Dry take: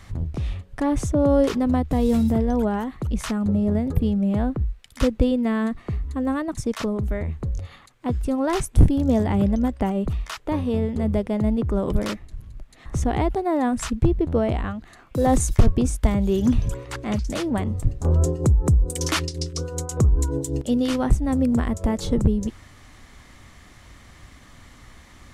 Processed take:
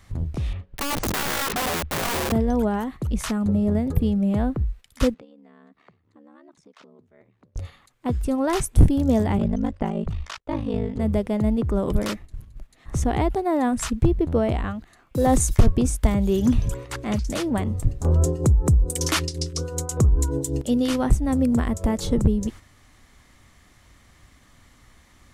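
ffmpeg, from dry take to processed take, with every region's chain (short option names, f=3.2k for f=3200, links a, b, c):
-filter_complex "[0:a]asettb=1/sr,asplit=3[a][b][c];[a]atrim=end=0.534[d];[b]atrim=start=0.53:end=2.32,asetpts=PTS-STARTPTS,afade=t=in:d=0.004:c=qsin,afade=t=out:st=1.786:d=0.004:c=qsin,lowpass=3k,acompressor=threshold=-20dB:ratio=4:attack=3.2:release=140:knee=1:detection=peak,aeval=exprs='(mod(11.9*val(0)+1,2)-1)/11.9':c=same[e];[c]atrim=start=2.316[f];[d][e]acrossfade=d=0.004:c1=hsin:c2=qsin[g];[g][f]acrossfade=d=0.004:c1=qsin:c2=hsin,asettb=1/sr,asplit=3[h][i][j];[h]atrim=end=5.144[k];[i]atrim=start=5.14:end=7.56,asetpts=PTS-STARTPTS,afade=t=in:d=0.004:c=qsin,afade=t=out:st=2.416:d=0.004:c=qsin,aeval=exprs='val(0)*sin(2*PI*36*n/s)':c=same,acompressor=threshold=-38dB:ratio=8:attack=3.2:release=140:knee=1:detection=peak,highpass=250,lowpass=4.8k[l];[j]atrim=start=7.556[m];[k][l]acrossfade=d=0.004:c1=hsin:c2=qsin[n];[n][m]acrossfade=d=0.004:c1=qsin:c2=hsin,asettb=1/sr,asplit=3[o][p][q];[o]atrim=end=9.374[r];[p]atrim=start=9.37:end=11,asetpts=PTS-STARTPTS,afade=t=in:d=0.004:c=qsin,afade=t=out:st=1.626:d=0.004:c=qsin,agate=range=-33dB:threshold=-36dB:ratio=3:release=100:detection=peak,lowpass=6.4k,aeval=exprs='val(0)*sin(2*PI*26*n/s)':c=same[s];[q]atrim=start=10.996[t];[r][s]acrossfade=d=0.004:c1=hsin:c2=qsin[u];[u][t]acrossfade=d=0.004:c1=qsin:c2=hsin,agate=range=-7dB:threshold=-36dB:ratio=16:detection=peak,highshelf=f=9.1k:g=6.5"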